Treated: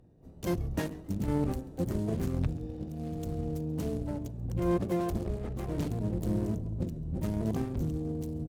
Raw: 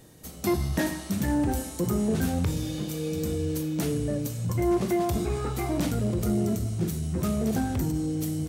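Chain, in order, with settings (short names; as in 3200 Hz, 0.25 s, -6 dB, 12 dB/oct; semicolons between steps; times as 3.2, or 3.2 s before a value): Wiener smoothing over 41 samples; on a send: frequency-shifting echo 0.136 s, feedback 36%, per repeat +100 Hz, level -21.5 dB; on the sum: harmoniser -12 st -3 dB, +7 st -7 dB; added harmonics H 7 -31 dB, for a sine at -10 dBFS; gain -6 dB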